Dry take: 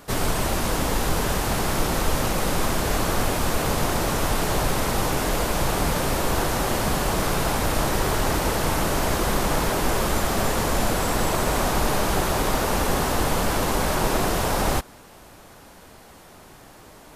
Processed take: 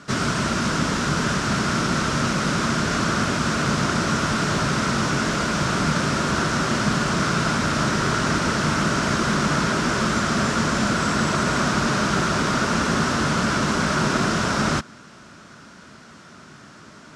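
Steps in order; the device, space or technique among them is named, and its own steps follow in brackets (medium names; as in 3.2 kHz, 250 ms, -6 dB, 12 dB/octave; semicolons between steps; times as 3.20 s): car door speaker (cabinet simulation 96–7500 Hz, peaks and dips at 150 Hz +6 dB, 220 Hz +7 dB, 490 Hz -6 dB, 800 Hz -9 dB, 1.4 kHz +9 dB, 5.5 kHz +4 dB); trim +1.5 dB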